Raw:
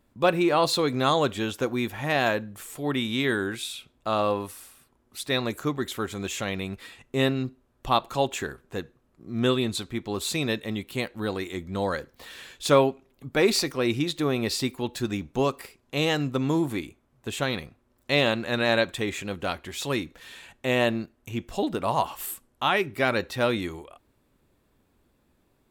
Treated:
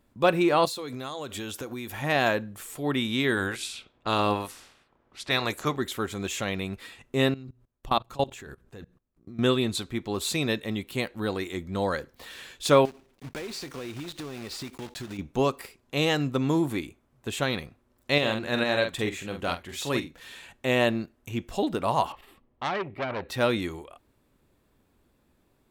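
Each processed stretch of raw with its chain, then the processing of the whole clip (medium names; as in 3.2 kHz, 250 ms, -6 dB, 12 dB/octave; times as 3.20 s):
0.65–2.02 s: treble shelf 5.7 kHz +9 dB + compression 10:1, threshold -31 dBFS + band-stop 170 Hz, Q 5.6
3.36–5.75 s: spectral peaks clipped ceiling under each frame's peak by 13 dB + level-controlled noise filter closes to 2.7 kHz, open at -25.5 dBFS
7.34–9.39 s: hum notches 60/120/180 Hz + level held to a coarse grid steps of 22 dB + bass shelf 120 Hz +9 dB
12.85–15.19 s: block-companded coder 3-bit + treble shelf 9.7 kHz -9.5 dB + compression, threshold -34 dBFS
18.18–20.18 s: doubling 46 ms -7 dB + tremolo saw up 2.2 Hz, depth 45%
22.12–23.29 s: distance through air 390 m + band-stop 1.5 kHz, Q 5.3 + transformer saturation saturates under 1.8 kHz
whole clip: none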